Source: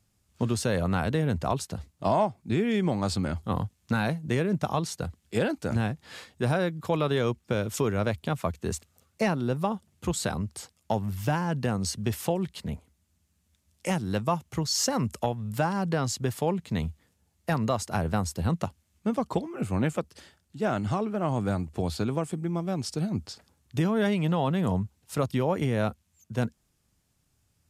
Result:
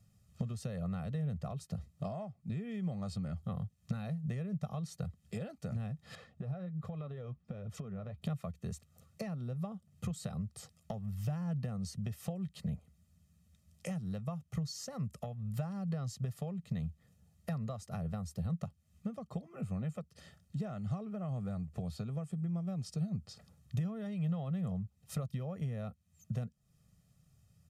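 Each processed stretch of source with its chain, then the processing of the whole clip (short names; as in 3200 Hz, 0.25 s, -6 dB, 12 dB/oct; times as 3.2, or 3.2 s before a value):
6.15–8.22 LPF 1600 Hz 6 dB/oct + flange 1.3 Hz, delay 0.9 ms, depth 6.7 ms, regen +53% + compressor 4:1, threshold -43 dBFS
whole clip: compressor 6:1, threshold -41 dBFS; bell 160 Hz +13 dB 1.5 oct; comb 1.6 ms, depth 72%; gain -5 dB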